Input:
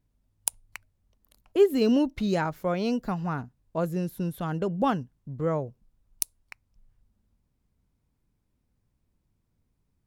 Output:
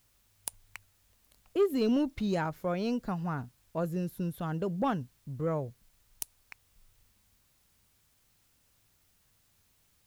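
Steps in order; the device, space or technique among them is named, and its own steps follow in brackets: open-reel tape (saturation -15 dBFS, distortion -17 dB; peaking EQ 100 Hz +4.5 dB; white noise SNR 35 dB); trim -4 dB

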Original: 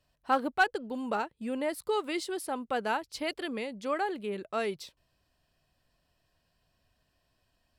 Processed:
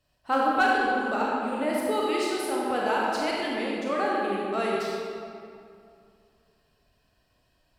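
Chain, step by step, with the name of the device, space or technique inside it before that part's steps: stairwell (reverberation RT60 2.4 s, pre-delay 24 ms, DRR -5 dB)

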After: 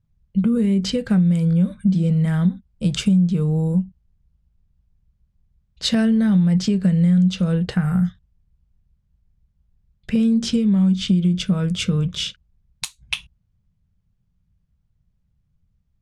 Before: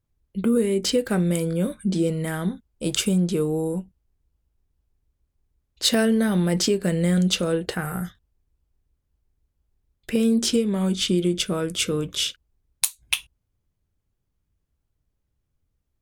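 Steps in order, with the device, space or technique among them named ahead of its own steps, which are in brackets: jukebox (low-pass 5.8 kHz 12 dB/octave; resonant low shelf 240 Hz +8 dB, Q 3; compression 4:1, threshold -15 dBFS, peak gain reduction 9.5 dB)

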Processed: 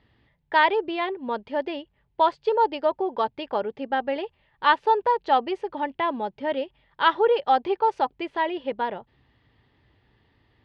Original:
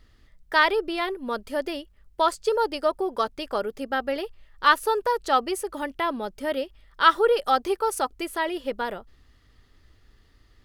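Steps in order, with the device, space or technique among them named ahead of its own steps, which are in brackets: guitar cabinet (cabinet simulation 98–3500 Hz, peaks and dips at 130 Hz +7 dB, 880 Hz +8 dB, 1.3 kHz -8 dB)

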